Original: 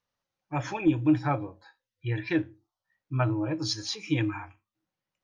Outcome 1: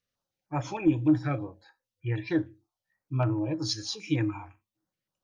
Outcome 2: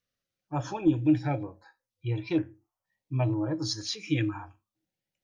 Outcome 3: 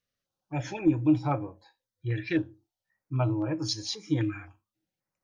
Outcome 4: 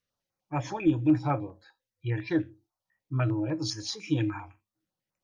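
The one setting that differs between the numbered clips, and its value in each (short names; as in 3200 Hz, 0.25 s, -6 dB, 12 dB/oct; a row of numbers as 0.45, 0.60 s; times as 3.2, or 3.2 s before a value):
stepped notch, rate: 6.5, 2.1, 3.8, 10 Hz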